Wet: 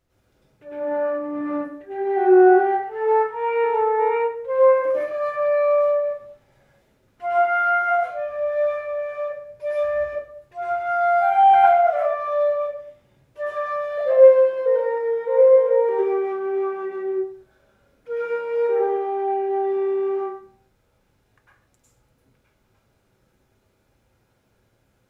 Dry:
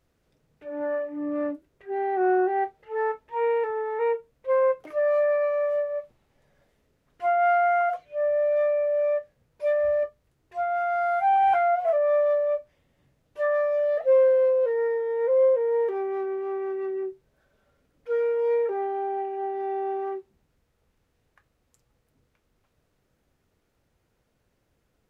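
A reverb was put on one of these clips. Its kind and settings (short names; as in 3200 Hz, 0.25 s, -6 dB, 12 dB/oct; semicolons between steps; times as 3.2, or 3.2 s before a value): plate-style reverb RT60 0.54 s, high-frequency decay 0.8×, pre-delay 90 ms, DRR -8.5 dB; gain -2 dB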